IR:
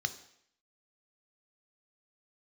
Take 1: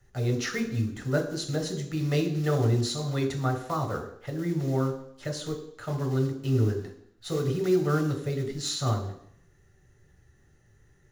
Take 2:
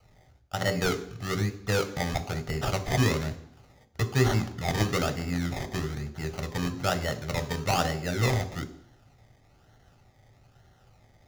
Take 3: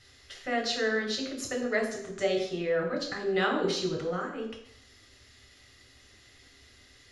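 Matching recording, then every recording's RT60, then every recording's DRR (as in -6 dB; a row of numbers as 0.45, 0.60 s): 2; 0.65, 0.65, 0.65 s; 4.0, 10.0, 0.0 dB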